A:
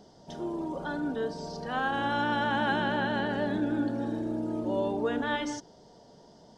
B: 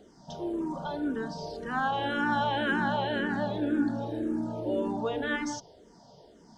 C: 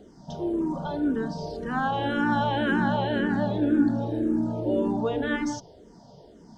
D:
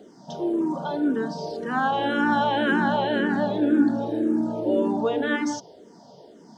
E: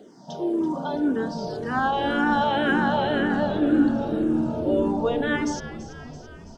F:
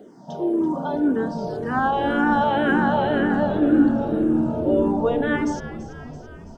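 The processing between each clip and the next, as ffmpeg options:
-filter_complex "[0:a]asplit=2[s0][s1];[s1]afreqshift=-1.9[s2];[s0][s2]amix=inputs=2:normalize=1,volume=1.41"
-af "lowshelf=f=480:g=8"
-af "highpass=220,volume=1.5"
-filter_complex "[0:a]asplit=8[s0][s1][s2][s3][s4][s5][s6][s7];[s1]adelay=333,afreqshift=-73,volume=0.211[s8];[s2]adelay=666,afreqshift=-146,volume=0.13[s9];[s3]adelay=999,afreqshift=-219,volume=0.0813[s10];[s4]adelay=1332,afreqshift=-292,volume=0.0501[s11];[s5]adelay=1665,afreqshift=-365,volume=0.0313[s12];[s6]adelay=1998,afreqshift=-438,volume=0.0193[s13];[s7]adelay=2331,afreqshift=-511,volume=0.012[s14];[s0][s8][s9][s10][s11][s12][s13][s14]amix=inputs=8:normalize=0"
-af "equalizer=f=4700:w=0.71:g=-9.5,volume=1.41"

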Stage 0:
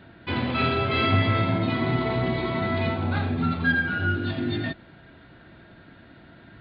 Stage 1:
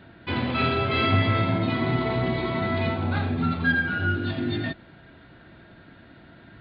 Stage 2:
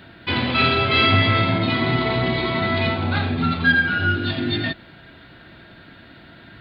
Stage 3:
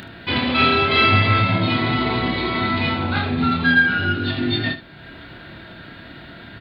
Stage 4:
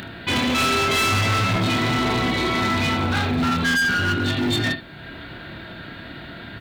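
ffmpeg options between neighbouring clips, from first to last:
-af anull
-af "highshelf=f=2400:g=11,volume=1.41"
-filter_complex "[0:a]acompressor=mode=upward:threshold=0.0224:ratio=2.5,asplit=2[s0][s1];[s1]aecho=0:1:28|76:0.531|0.211[s2];[s0][s2]amix=inputs=2:normalize=0"
-filter_complex "[0:a]asplit=2[s0][s1];[s1]aeval=exprs='(mod(6.31*val(0)+1,2)-1)/6.31':c=same,volume=0.316[s2];[s0][s2]amix=inputs=2:normalize=0,acrusher=bits=10:mix=0:aa=0.000001,asoftclip=type=hard:threshold=0.126"

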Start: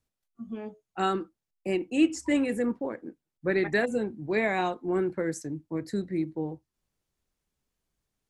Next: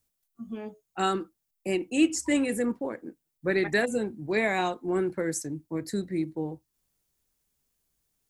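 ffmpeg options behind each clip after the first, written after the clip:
-af "aemphasis=mode=production:type=50kf"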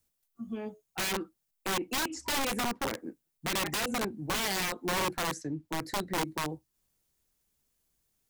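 -filter_complex "[0:a]acrossover=split=280|4900[s0][s1][s2];[s0]acompressor=threshold=0.0178:ratio=4[s3];[s1]acompressor=threshold=0.0447:ratio=4[s4];[s2]acompressor=threshold=0.00141:ratio=4[s5];[s3][s4][s5]amix=inputs=3:normalize=0,aeval=exprs='(mod(18.8*val(0)+1,2)-1)/18.8':c=same"

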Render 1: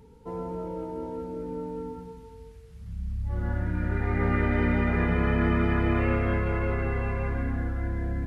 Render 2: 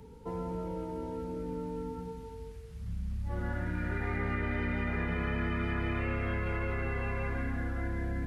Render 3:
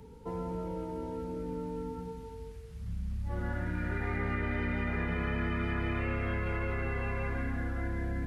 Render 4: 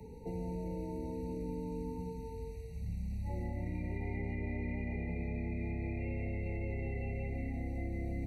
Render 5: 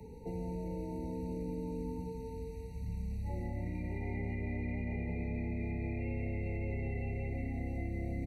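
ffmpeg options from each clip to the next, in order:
-filter_complex "[0:a]acrossover=split=180|1500[s0][s1][s2];[s0]acompressor=threshold=0.0158:ratio=4[s3];[s1]acompressor=threshold=0.01:ratio=4[s4];[s2]acompressor=threshold=0.00794:ratio=4[s5];[s3][s4][s5]amix=inputs=3:normalize=0,volume=1.26"
-af anull
-filter_complex "[0:a]acrossover=split=80|360|2200[s0][s1][s2][s3];[s0]acompressor=threshold=0.00708:ratio=4[s4];[s1]acompressor=threshold=0.00891:ratio=4[s5];[s2]acompressor=threshold=0.00355:ratio=4[s6];[s3]acompressor=threshold=0.001:ratio=4[s7];[s4][s5][s6][s7]amix=inputs=4:normalize=0,afftfilt=real='re*eq(mod(floor(b*sr/1024/940),2),0)':imag='im*eq(mod(floor(b*sr/1024/940),2),0)':win_size=1024:overlap=0.75,volume=1.26"
-af "aecho=1:1:650:0.251"

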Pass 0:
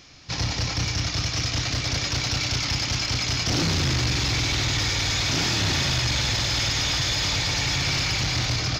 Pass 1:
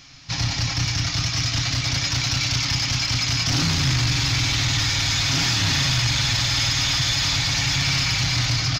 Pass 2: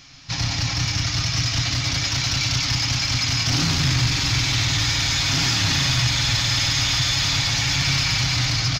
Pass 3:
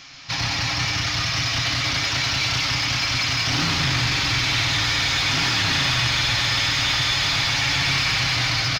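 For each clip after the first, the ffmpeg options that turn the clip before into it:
-af "equalizer=f=450:t=o:w=1:g=-11.5,aecho=1:1:7.3:0.44,acontrast=82,volume=0.596"
-af "aecho=1:1:139:0.376"
-filter_complex "[0:a]asplit=2[s0][s1];[s1]highpass=f=720:p=1,volume=3.98,asoftclip=type=tanh:threshold=0.266[s2];[s0][s2]amix=inputs=2:normalize=0,lowpass=f=3400:p=1,volume=0.501,acrossover=split=5700[s3][s4];[s4]acompressor=threshold=0.0158:ratio=4:attack=1:release=60[s5];[s3][s5]amix=inputs=2:normalize=0,asplit=2[s6][s7];[s7]adelay=130,highpass=300,lowpass=3400,asoftclip=type=hard:threshold=0.0794,volume=0.501[s8];[s6][s8]amix=inputs=2:normalize=0"

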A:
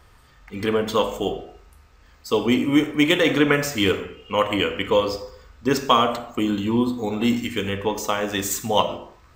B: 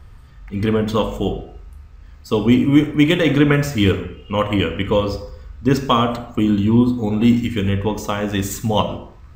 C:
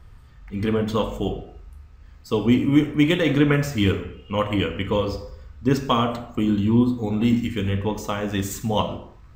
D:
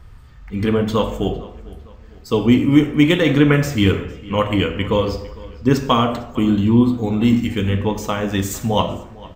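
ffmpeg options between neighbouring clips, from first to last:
-af "bass=f=250:g=13,treble=f=4000:g=-3"
-af "flanger=delay=5.9:depth=8.8:regen=-74:speed=0.86:shape=triangular"
-filter_complex "[0:a]asplit=2[s0][s1];[s1]adelay=454,lowpass=f=4900:p=1,volume=0.0944,asplit=2[s2][s3];[s3]adelay=454,lowpass=f=4900:p=1,volume=0.44,asplit=2[s4][s5];[s5]adelay=454,lowpass=f=4900:p=1,volume=0.44[s6];[s0][s2][s4][s6]amix=inputs=4:normalize=0,volume=1.68"

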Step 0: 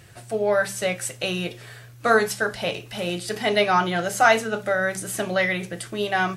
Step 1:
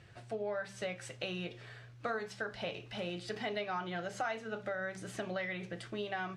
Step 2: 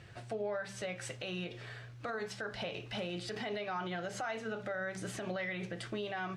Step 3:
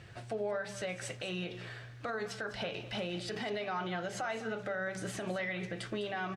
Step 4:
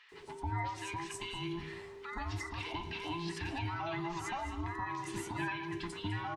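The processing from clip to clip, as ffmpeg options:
-af "lowpass=4400,acompressor=threshold=0.0447:ratio=4,volume=0.376"
-af "alimiter=level_in=2.82:limit=0.0631:level=0:latency=1:release=82,volume=0.355,volume=1.58"
-af "aecho=1:1:203:0.188,volume=1.19"
-filter_complex "[0:a]afftfilt=real='real(if(between(b,1,1008),(2*floor((b-1)/24)+1)*24-b,b),0)':imag='imag(if(between(b,1,1008),(2*floor((b-1)/24)+1)*24-b,b),0)*if(between(b,1,1008),-1,1)':win_size=2048:overlap=0.75,acrossover=split=1200|5100[s0][s1][s2];[s2]adelay=90[s3];[s0]adelay=120[s4];[s4][s1][s3]amix=inputs=3:normalize=0"

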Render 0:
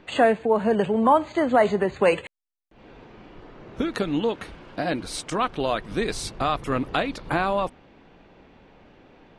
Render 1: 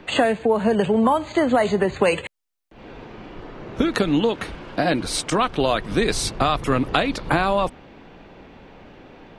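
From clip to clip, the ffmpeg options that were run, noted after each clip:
-filter_complex "[0:a]acrossover=split=130|3000[s0][s1][s2];[s1]acompressor=threshold=0.0708:ratio=6[s3];[s0][s3][s2]amix=inputs=3:normalize=0,volume=2.37"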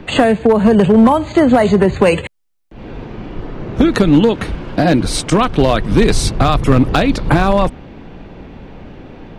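-af "lowshelf=f=300:g=11,volume=2.51,asoftclip=hard,volume=0.398,volume=1.68"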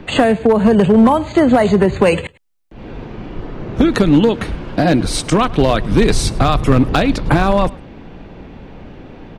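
-af "aecho=1:1:105:0.075,volume=0.891"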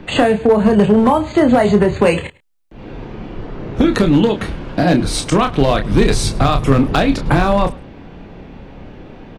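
-filter_complex "[0:a]asplit=2[s0][s1];[s1]adelay=29,volume=0.447[s2];[s0][s2]amix=inputs=2:normalize=0,volume=0.891"

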